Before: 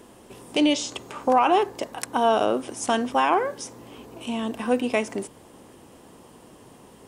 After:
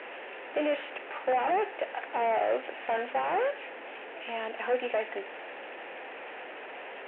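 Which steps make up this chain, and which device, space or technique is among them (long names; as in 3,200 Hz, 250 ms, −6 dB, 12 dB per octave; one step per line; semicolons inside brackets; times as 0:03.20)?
digital answering machine (band-pass filter 380–3,100 Hz; linear delta modulator 16 kbit/s, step −36 dBFS; loudspeaker in its box 460–3,300 Hz, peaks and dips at 540 Hz +3 dB, 770 Hz +3 dB, 1,100 Hz −8 dB, 1,800 Hz +5 dB, 2,600 Hz +5 dB)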